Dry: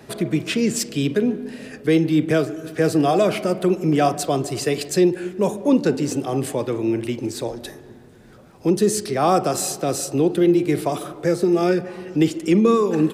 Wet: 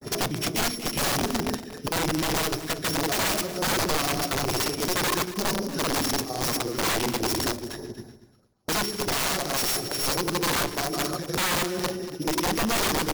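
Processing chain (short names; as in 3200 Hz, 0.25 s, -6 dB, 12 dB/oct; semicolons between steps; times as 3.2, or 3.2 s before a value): sample sorter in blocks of 8 samples; gate with hold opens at -36 dBFS; in parallel at 0 dB: vocal rider within 5 dB 2 s; on the sum: limiter -9.5 dBFS, peak gain reduction 9.5 dB; tremolo triangle 2.2 Hz, depth 75%; grains 0.1 s, grains 20/s; LFO notch sine 8.1 Hz 480–3400 Hz; wrapped overs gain 20 dB; echo 0.236 s -14.5 dB; on a send at -18 dB: reverb RT60 0.55 s, pre-delay 3 ms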